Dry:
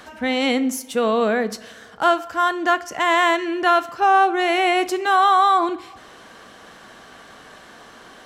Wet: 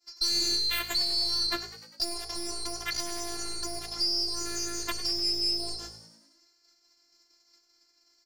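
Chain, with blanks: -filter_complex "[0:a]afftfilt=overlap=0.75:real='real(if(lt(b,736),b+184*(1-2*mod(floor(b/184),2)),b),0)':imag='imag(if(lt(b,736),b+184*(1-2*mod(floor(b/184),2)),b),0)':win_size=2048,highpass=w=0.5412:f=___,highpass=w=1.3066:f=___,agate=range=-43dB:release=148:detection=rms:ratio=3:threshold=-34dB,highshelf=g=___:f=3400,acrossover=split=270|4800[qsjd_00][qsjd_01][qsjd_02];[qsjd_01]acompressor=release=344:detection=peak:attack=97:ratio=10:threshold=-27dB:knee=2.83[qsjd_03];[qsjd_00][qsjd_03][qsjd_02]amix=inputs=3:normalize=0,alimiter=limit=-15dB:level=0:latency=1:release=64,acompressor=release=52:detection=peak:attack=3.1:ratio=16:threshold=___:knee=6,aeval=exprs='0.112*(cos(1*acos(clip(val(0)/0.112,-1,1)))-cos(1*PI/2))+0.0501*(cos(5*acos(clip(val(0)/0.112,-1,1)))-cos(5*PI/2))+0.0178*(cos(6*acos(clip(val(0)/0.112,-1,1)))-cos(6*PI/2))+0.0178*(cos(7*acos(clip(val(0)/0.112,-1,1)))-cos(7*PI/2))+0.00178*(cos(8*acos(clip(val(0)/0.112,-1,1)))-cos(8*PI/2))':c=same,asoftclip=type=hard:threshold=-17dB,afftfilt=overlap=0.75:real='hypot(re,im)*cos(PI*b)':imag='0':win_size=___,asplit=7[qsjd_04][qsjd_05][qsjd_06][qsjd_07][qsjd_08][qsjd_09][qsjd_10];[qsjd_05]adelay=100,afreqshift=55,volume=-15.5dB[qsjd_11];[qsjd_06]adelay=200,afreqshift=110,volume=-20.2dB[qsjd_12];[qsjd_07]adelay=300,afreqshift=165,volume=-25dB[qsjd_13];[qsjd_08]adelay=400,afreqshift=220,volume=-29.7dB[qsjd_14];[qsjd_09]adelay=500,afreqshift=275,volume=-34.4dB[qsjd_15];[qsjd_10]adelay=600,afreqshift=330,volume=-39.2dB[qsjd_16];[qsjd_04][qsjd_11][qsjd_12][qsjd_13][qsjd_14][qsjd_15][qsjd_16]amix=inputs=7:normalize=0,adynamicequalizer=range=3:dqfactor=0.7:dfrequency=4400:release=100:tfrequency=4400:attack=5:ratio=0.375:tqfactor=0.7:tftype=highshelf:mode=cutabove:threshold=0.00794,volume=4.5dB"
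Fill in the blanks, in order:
96, 96, -6.5, -30dB, 512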